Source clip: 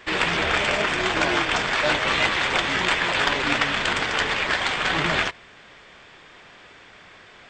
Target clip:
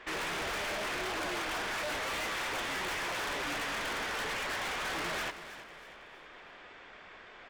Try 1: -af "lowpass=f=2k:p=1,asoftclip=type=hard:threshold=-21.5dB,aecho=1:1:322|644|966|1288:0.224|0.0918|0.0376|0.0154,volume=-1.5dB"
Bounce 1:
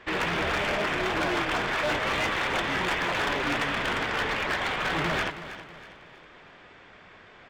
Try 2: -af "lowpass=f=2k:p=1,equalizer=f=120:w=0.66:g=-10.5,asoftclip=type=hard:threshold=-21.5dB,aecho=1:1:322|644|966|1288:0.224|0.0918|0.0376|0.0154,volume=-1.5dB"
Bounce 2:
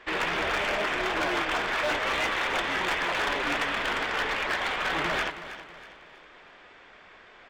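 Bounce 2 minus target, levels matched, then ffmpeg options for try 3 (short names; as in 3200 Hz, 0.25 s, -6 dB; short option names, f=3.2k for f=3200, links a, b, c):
hard clip: distortion -8 dB
-af "lowpass=f=2k:p=1,equalizer=f=120:w=0.66:g=-10.5,asoftclip=type=hard:threshold=-33dB,aecho=1:1:322|644|966|1288:0.224|0.0918|0.0376|0.0154,volume=-1.5dB"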